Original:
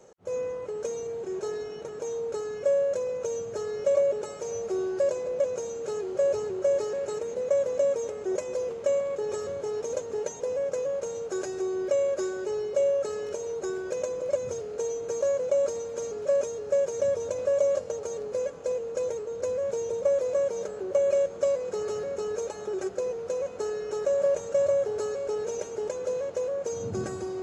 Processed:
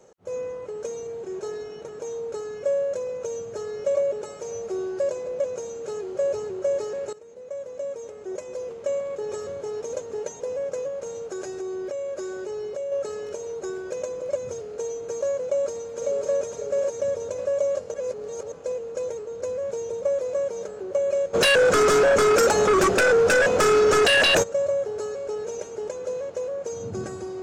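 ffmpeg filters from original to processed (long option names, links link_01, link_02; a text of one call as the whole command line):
ffmpeg -i in.wav -filter_complex "[0:a]asettb=1/sr,asplit=3[link_01][link_02][link_03];[link_01]atrim=end=10.884[link_04];[link_02]atrim=start=10.88:end=12.92,asetpts=PTS-STARTPTS,afade=type=in:duration=0.004:curve=qsin,afade=type=out:start_time=2.036:duration=0.004:curve=qsin,acompressor=threshold=-28dB:ratio=6:attack=3.2:release=140:knee=1:detection=peak[link_05];[link_03]atrim=start=12.916[link_06];[link_04][link_05]acrossfade=duration=0.004:curve1=hsin:curve2=qsin[link_07];[link_07][link_06]acrossfade=duration=0.004:curve1=qsin:curve2=hsin,asplit=2[link_08][link_09];[link_09]afade=type=in:start_time=15.46:duration=0.01,afade=type=out:start_time=16.34:duration=0.01,aecho=0:1:550|1100|1650|2200|2750:0.749894|0.262463|0.091862|0.0321517|0.0112531[link_10];[link_08][link_10]amix=inputs=2:normalize=0,asplit=3[link_11][link_12][link_13];[link_11]afade=type=out:start_time=21.33:duration=0.02[link_14];[link_12]aeval=exprs='0.188*sin(PI/2*7.08*val(0)/0.188)':channel_layout=same,afade=type=in:start_time=21.33:duration=0.02,afade=type=out:start_time=24.42:duration=0.02[link_15];[link_13]afade=type=in:start_time=24.42:duration=0.02[link_16];[link_14][link_15][link_16]amix=inputs=3:normalize=0,asplit=4[link_17][link_18][link_19][link_20];[link_17]atrim=end=7.13,asetpts=PTS-STARTPTS,afade=type=out:start_time=7.126:duration=0.004:curve=hsin:silence=0.149624[link_21];[link_18]atrim=start=7.13:end=17.942,asetpts=PTS-STARTPTS,afade=type=in:duration=2.14:silence=0.149624[link_22];[link_19]atrim=start=17.938:end=18.522,asetpts=PTS-STARTPTS,areverse[link_23];[link_20]atrim=start=18.518[link_24];[link_21][link_22]concat=n=2:v=0:a=1[link_25];[link_25][link_23]acrossfade=duration=0.004:curve1=hsin:curve2=hsin[link_26];[link_26][link_24]acrossfade=duration=0.004:curve1=hsin:curve2=hsin" out.wav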